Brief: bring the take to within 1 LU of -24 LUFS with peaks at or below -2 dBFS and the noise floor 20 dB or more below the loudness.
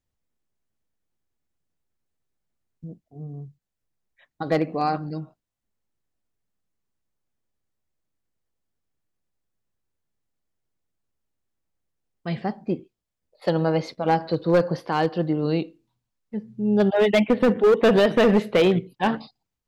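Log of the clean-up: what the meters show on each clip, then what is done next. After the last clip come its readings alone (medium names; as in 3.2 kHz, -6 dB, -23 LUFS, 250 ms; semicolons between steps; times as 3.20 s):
clipped samples 0.7%; clipping level -12.5 dBFS; loudness -22.0 LUFS; peak level -12.5 dBFS; loudness target -24.0 LUFS
-> clip repair -12.5 dBFS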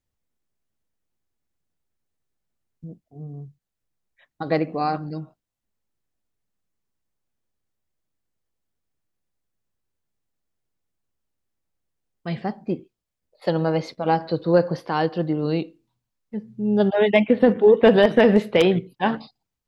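clipped samples 0.0%; loudness -20.5 LUFS; peak level -3.5 dBFS; loudness target -24.0 LUFS
-> trim -3.5 dB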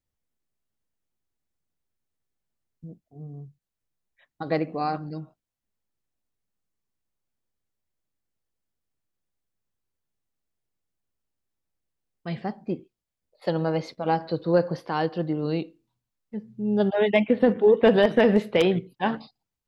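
loudness -24.0 LUFS; peak level -7.0 dBFS; noise floor -86 dBFS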